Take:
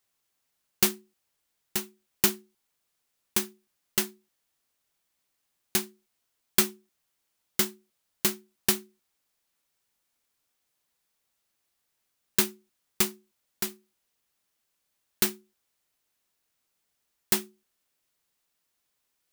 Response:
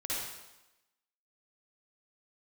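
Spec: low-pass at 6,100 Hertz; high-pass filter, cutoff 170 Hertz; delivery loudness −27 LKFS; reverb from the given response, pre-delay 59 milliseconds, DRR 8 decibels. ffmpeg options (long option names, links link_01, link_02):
-filter_complex "[0:a]highpass=170,lowpass=6100,asplit=2[link_01][link_02];[1:a]atrim=start_sample=2205,adelay=59[link_03];[link_02][link_03]afir=irnorm=-1:irlink=0,volume=-12.5dB[link_04];[link_01][link_04]amix=inputs=2:normalize=0,volume=7dB"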